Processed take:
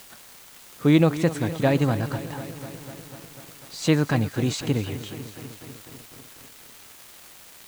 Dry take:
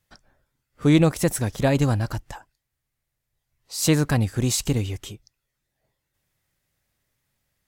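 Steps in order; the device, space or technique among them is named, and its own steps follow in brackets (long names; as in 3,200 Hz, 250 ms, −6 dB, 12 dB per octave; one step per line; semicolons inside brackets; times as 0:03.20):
78 rpm shellac record (band-pass filter 120–4,500 Hz; surface crackle 370 per second −35 dBFS; white noise bed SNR 22 dB)
dynamic equaliser 5,300 Hz, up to −5 dB, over −57 dBFS, Q 5.6
feedback echo at a low word length 248 ms, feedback 80%, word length 7 bits, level −14 dB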